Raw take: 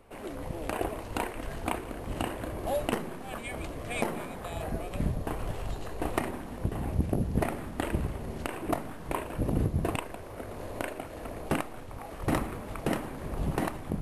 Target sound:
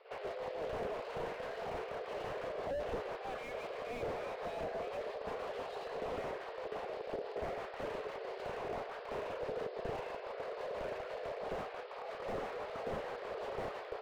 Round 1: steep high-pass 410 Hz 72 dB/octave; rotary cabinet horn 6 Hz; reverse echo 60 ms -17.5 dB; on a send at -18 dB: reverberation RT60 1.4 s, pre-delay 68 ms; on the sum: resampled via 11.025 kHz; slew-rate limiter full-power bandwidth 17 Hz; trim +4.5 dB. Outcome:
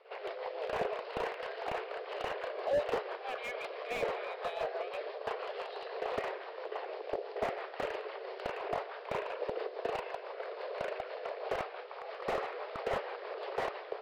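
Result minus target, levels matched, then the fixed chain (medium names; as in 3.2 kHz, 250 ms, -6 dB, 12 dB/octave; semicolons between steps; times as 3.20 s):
slew-rate limiter: distortion -7 dB
steep high-pass 410 Hz 72 dB/octave; rotary cabinet horn 6 Hz; reverse echo 60 ms -17.5 dB; on a send at -18 dB: reverberation RT60 1.4 s, pre-delay 68 ms; on the sum: resampled via 11.025 kHz; slew-rate limiter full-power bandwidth 5.5 Hz; trim +4.5 dB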